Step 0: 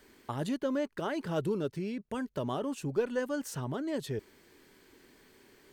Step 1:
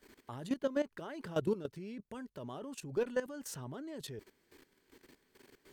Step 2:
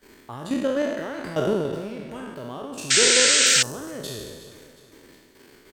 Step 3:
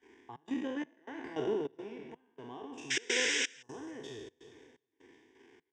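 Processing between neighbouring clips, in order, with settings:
output level in coarse steps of 15 dB; level +1 dB
peak hold with a decay on every bin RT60 1.37 s; repeating echo 364 ms, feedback 49%, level −15 dB; sound drawn into the spectrogram noise, 0:02.90–0:03.63, 1,300–8,700 Hz −24 dBFS; level +6.5 dB
phaser with its sweep stopped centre 870 Hz, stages 8; gate pattern "xxx.xxx..xx" 126 BPM −24 dB; loudspeaker in its box 110–5,800 Hz, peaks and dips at 160 Hz +7 dB, 2,500 Hz −3 dB, 3,600 Hz +5 dB, 5,500 Hz +4 dB; level −7 dB

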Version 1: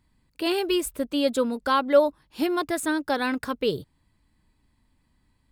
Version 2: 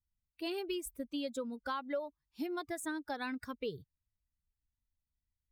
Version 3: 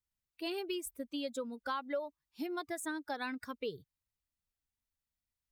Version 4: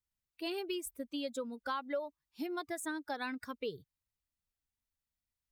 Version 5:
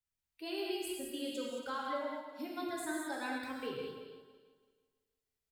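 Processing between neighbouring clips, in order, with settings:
spectral dynamics exaggerated over time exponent 1.5; downward compressor 6 to 1, threshold −27 dBFS, peak gain reduction 13 dB; level −7.5 dB
low-shelf EQ 140 Hz −11 dB; level +1 dB
no processing that can be heard
feedback delay that plays each chunk backwards 166 ms, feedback 49%, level −12.5 dB; single-tap delay 219 ms −11 dB; convolution reverb, pre-delay 3 ms, DRR −3 dB; level −5 dB

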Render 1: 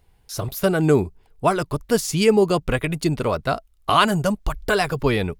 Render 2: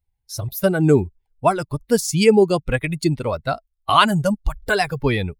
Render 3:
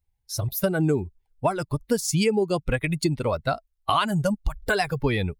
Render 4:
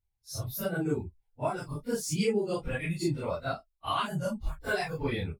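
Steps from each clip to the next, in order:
spectral dynamics exaggerated over time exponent 1.5; level +4 dB
downward compressor 6 to 1, threshold −19 dBFS, peak gain reduction 11 dB
random phases in long frames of 100 ms; level −7.5 dB

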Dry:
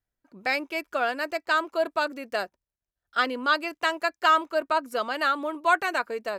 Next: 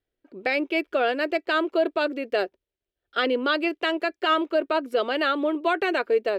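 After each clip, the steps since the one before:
drawn EQ curve 200 Hz 0 dB, 390 Hz +14 dB, 1,000 Hz −3 dB, 3,200 Hz +7 dB, 6,500 Hz −9 dB
brickwall limiter −13.5 dBFS, peak gain reduction 7.5 dB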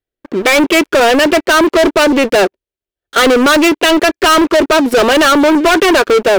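leveller curve on the samples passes 5
level +7.5 dB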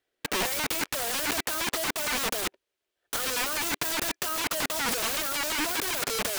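mid-hump overdrive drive 25 dB, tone 4,800 Hz, clips at −5.5 dBFS
wrap-around overflow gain 13.5 dB
level −8.5 dB

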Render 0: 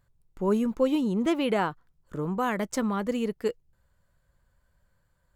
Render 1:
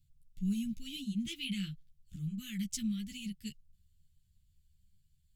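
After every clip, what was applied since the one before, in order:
elliptic band-stop filter 170–2,900 Hz, stop band 80 dB
string-ensemble chorus
level +2.5 dB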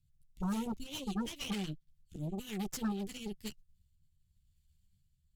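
rotating-speaker cabinet horn 7 Hz, later 0.85 Hz, at 0:02.55
harmonic generator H 8 −13 dB, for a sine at −27.5 dBFS

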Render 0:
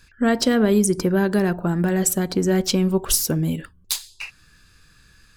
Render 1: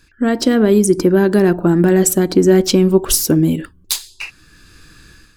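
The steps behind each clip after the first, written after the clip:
parametric band 320 Hz +10 dB 0.59 octaves
automatic gain control gain up to 10 dB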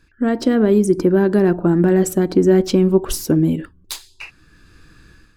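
high-shelf EQ 2,800 Hz −10 dB
level −2 dB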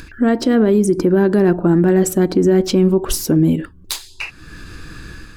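in parallel at −1.5 dB: upward compression, threshold −17 dBFS
on the sum: brickwall limiter −4 dBFS, peak gain reduction 6 dB
level −2 dB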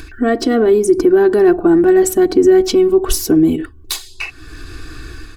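comb filter 2.7 ms, depth 87%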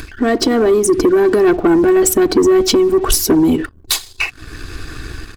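harmonic and percussive parts rebalanced harmonic −7 dB
leveller curve on the samples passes 2

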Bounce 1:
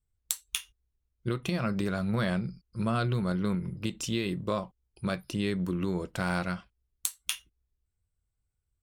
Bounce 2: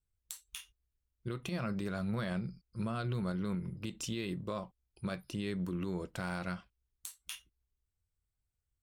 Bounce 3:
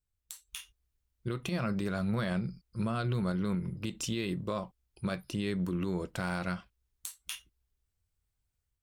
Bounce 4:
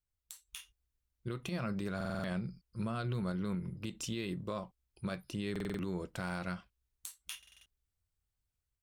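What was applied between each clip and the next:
brickwall limiter −22.5 dBFS, peak gain reduction 11 dB; level −5 dB
automatic gain control gain up to 5.5 dB; level −1.5 dB
buffer that repeats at 0:01.96/0:05.51/0:07.38, samples 2,048, times 5; level −4.5 dB

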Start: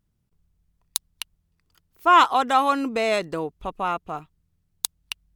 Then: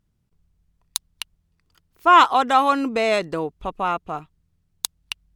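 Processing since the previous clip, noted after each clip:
high-shelf EQ 11,000 Hz −8 dB
level +2.5 dB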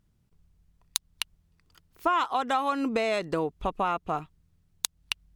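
downward compressor 6 to 1, threshold −25 dBFS, peak gain reduction 16 dB
level +1.5 dB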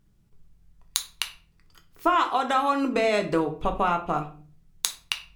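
convolution reverb RT60 0.45 s, pre-delay 6 ms, DRR 4 dB
level +2.5 dB

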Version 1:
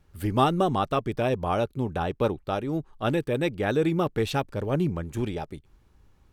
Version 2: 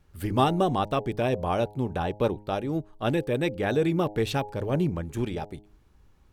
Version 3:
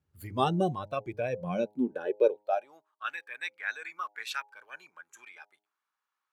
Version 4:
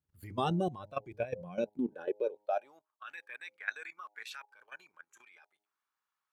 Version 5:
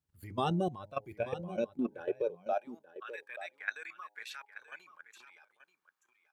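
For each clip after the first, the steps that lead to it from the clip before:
hum removal 104.1 Hz, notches 9; dynamic equaliser 1,300 Hz, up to −5 dB, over −46 dBFS, Q 5.3
high-pass filter sweep 98 Hz → 1,200 Hz, 0:01.18–0:02.94; noise reduction from a noise print of the clip's start 14 dB; level −3.5 dB
output level in coarse steps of 15 dB
single-tap delay 883 ms −13.5 dB

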